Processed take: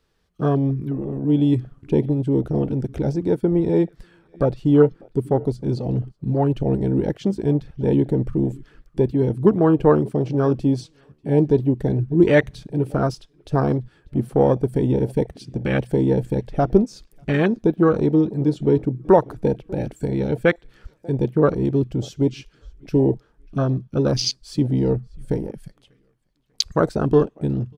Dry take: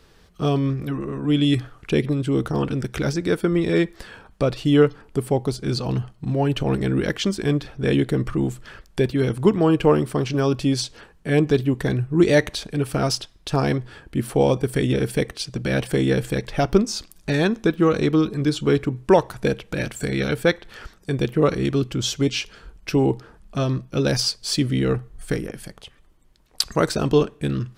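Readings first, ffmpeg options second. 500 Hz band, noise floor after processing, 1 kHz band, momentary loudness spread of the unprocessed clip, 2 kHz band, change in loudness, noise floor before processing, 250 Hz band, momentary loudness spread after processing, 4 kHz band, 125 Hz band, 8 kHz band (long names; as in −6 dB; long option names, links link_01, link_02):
+1.5 dB, −62 dBFS, +0.5 dB, 9 LU, −4.0 dB, +1.0 dB, −53 dBFS, +1.5 dB, 10 LU, −6.0 dB, +1.5 dB, can't be measured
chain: -filter_complex "[0:a]asplit=2[link_01][link_02];[link_02]adelay=592,lowpass=frequency=2900:poles=1,volume=-22dB,asplit=2[link_03][link_04];[link_04]adelay=592,lowpass=frequency=2900:poles=1,volume=0.43,asplit=2[link_05][link_06];[link_06]adelay=592,lowpass=frequency=2900:poles=1,volume=0.43[link_07];[link_01][link_03][link_05][link_07]amix=inputs=4:normalize=0,afwtdn=0.0562,volume=1.5dB"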